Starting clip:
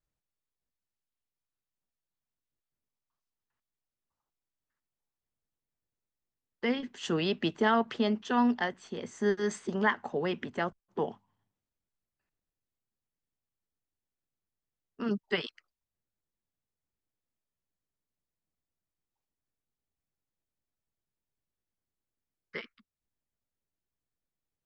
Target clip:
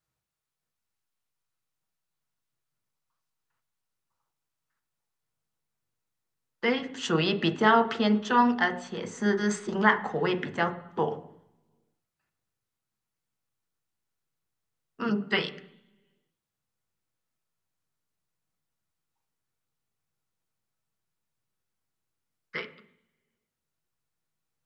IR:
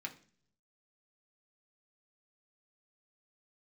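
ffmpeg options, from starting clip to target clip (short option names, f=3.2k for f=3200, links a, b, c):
-filter_complex "[0:a]asplit=2[a][b];[1:a]atrim=start_sample=2205,asetrate=25137,aresample=44100[c];[b][c]afir=irnorm=-1:irlink=0,volume=0.5dB[d];[a][d]amix=inputs=2:normalize=0"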